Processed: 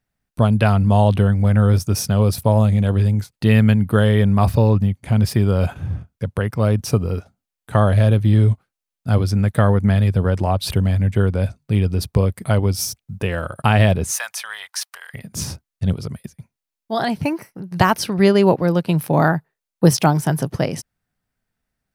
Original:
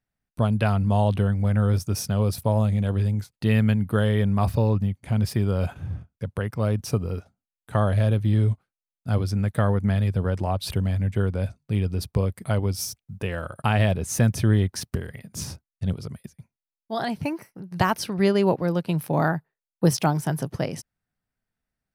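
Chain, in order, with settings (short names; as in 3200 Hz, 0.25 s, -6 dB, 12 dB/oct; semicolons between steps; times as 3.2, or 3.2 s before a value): 14.11–15.14 inverse Chebyshev high-pass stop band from 340 Hz, stop band 50 dB; gain +6.5 dB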